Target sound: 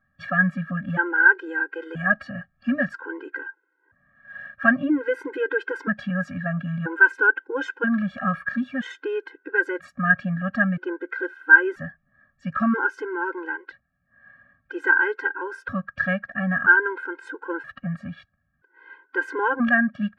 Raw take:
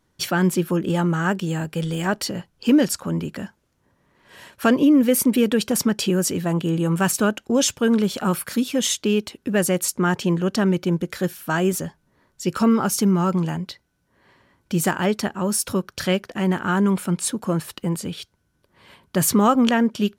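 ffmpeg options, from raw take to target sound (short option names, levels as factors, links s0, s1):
-af "lowpass=f=1600:t=q:w=15,afftfilt=real='re*gt(sin(2*PI*0.51*pts/sr)*(1-2*mod(floor(b*sr/1024/270),2)),0)':imag='im*gt(sin(2*PI*0.51*pts/sr)*(1-2*mod(floor(b*sr/1024/270),2)),0)':win_size=1024:overlap=0.75,volume=0.631"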